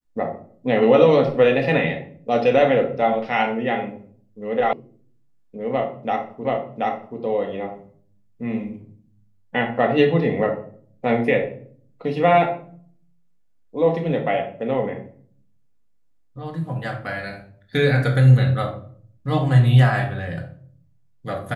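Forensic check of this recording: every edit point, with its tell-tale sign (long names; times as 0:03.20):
0:04.73: cut off before it has died away
0:06.45: the same again, the last 0.73 s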